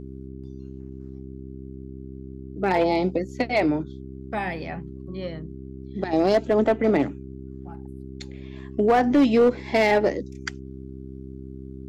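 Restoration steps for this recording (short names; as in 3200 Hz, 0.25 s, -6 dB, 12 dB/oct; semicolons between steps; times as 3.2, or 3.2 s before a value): clip repair -12.5 dBFS; de-hum 66 Hz, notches 6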